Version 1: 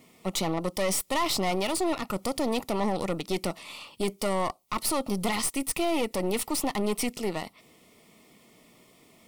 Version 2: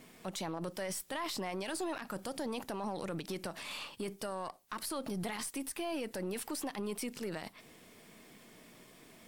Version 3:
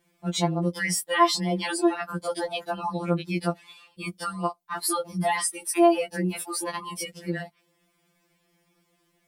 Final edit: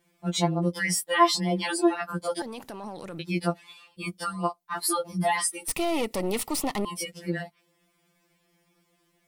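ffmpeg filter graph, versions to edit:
-filter_complex "[2:a]asplit=3[a][b][c];[a]atrim=end=2.422[d];[1:a]atrim=start=2.418:end=3.192[e];[b]atrim=start=3.188:end=5.682[f];[0:a]atrim=start=5.678:end=6.852[g];[c]atrim=start=6.848[h];[d][e]acrossfade=d=0.004:c1=hsin:c2=hsin[i];[i][f]acrossfade=d=0.004:c1=hsin:c2=hsin[j];[j][g]acrossfade=d=0.004:c1=hsin:c2=hsin[k];[k][h]acrossfade=d=0.004:c1=hsin:c2=hsin"

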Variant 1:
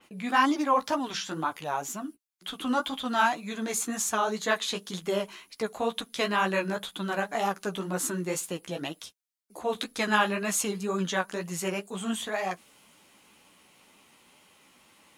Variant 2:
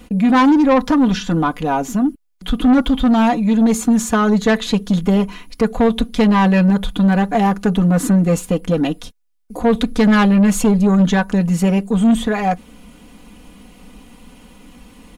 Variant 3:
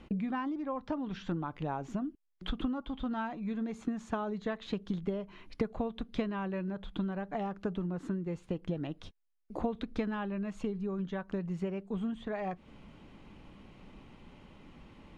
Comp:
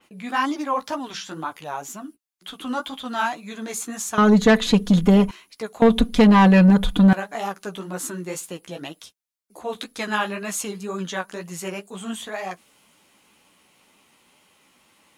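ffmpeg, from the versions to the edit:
-filter_complex "[1:a]asplit=2[a][b];[0:a]asplit=3[c][d][e];[c]atrim=end=4.182[f];[a]atrim=start=4.178:end=5.312[g];[d]atrim=start=5.308:end=5.822[h];[b]atrim=start=5.818:end=7.132[i];[e]atrim=start=7.128[j];[f][g]acrossfade=d=0.004:c1=hsin:c2=hsin[k];[k][h]acrossfade=d=0.004:c1=hsin:c2=hsin[l];[l][i]acrossfade=d=0.004:c1=hsin:c2=hsin[m];[m][j]acrossfade=d=0.004:c1=hsin:c2=hsin"

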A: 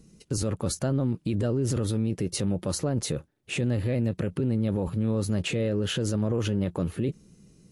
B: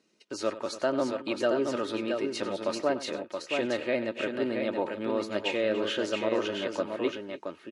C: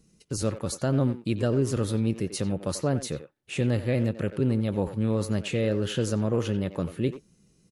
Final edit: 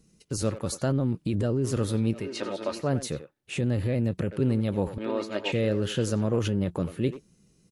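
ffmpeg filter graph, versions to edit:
-filter_complex "[0:a]asplit=3[a][b][c];[1:a]asplit=2[d][e];[2:a]asplit=6[f][g][h][i][j][k];[f]atrim=end=0.922[l];[a]atrim=start=0.918:end=1.642[m];[g]atrim=start=1.638:end=2.36[n];[d]atrim=start=2.12:end=2.92[o];[h]atrim=start=2.68:end=3.582[p];[b]atrim=start=3.578:end=4.312[q];[i]atrim=start=4.308:end=4.982[r];[e]atrim=start=4.978:end=5.522[s];[j]atrim=start=5.518:end=6.392[t];[c]atrim=start=6.388:end=6.832[u];[k]atrim=start=6.828[v];[l][m]acrossfade=d=0.004:c1=hsin:c2=hsin[w];[w][n]acrossfade=d=0.004:c1=hsin:c2=hsin[x];[x][o]acrossfade=d=0.24:c1=tri:c2=tri[y];[y][p]acrossfade=d=0.24:c1=tri:c2=tri[z];[z][q]acrossfade=d=0.004:c1=hsin:c2=hsin[aa];[aa][r]acrossfade=d=0.004:c1=hsin:c2=hsin[ab];[ab][s]acrossfade=d=0.004:c1=hsin:c2=hsin[ac];[ac][t]acrossfade=d=0.004:c1=hsin:c2=hsin[ad];[ad][u]acrossfade=d=0.004:c1=hsin:c2=hsin[ae];[ae][v]acrossfade=d=0.004:c1=hsin:c2=hsin"

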